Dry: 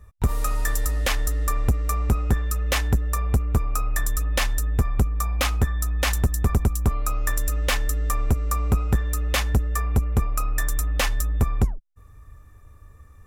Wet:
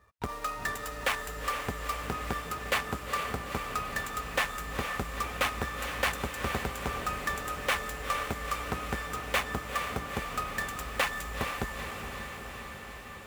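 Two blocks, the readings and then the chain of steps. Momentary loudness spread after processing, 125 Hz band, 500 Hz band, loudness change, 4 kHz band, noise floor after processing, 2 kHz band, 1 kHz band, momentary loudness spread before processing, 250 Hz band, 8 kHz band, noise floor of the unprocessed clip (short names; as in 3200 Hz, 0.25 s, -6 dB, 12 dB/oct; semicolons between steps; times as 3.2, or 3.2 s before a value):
6 LU, -17.5 dB, -3.5 dB, -8.5 dB, -4.0 dB, -43 dBFS, -0.5 dB, -0.5 dB, 3 LU, -9.0 dB, -10.0 dB, -48 dBFS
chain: median filter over 9 samples; HPF 730 Hz 6 dB/oct; diffused feedback echo 0.456 s, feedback 73%, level -6 dB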